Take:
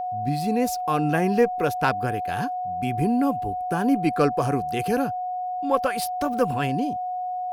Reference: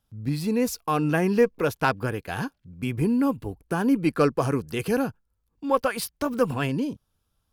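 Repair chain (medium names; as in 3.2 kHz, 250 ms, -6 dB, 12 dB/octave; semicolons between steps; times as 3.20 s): band-stop 730 Hz, Q 30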